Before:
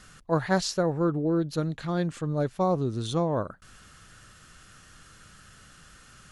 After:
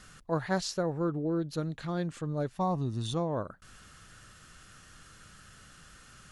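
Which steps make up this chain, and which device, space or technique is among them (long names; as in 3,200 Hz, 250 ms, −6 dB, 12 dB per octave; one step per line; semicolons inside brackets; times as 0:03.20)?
parallel compression (in parallel at −2.5 dB: downward compressor, threshold −37 dBFS, peak gain reduction 17 dB)
0:02.56–0:03.14: on the sum: comb filter 1.1 ms, depth 56%
level −6.5 dB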